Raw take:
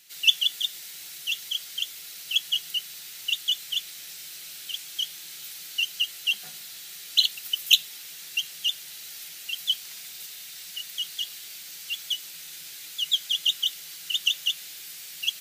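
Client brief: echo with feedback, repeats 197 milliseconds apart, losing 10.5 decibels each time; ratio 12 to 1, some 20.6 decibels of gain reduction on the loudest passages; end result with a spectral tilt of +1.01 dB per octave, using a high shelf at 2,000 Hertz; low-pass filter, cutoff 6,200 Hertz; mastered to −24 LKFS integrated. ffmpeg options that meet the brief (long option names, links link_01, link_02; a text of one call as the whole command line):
ffmpeg -i in.wav -af "lowpass=6200,highshelf=frequency=2000:gain=4.5,acompressor=threshold=-32dB:ratio=12,aecho=1:1:197|394|591:0.299|0.0896|0.0269,volume=12dB" out.wav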